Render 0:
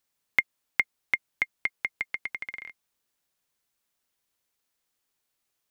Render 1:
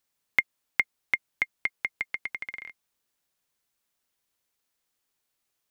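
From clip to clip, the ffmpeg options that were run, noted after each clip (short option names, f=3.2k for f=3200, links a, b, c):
-af anull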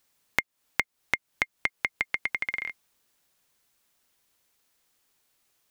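-af "acompressor=threshold=-32dB:ratio=6,volume=8.5dB"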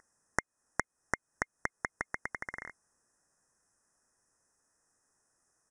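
-af "aeval=exprs='val(0)+0.0141*sin(2*PI*2500*n/s)':c=same,asuperstop=centerf=3200:order=20:qfactor=0.98,aresample=22050,aresample=44100"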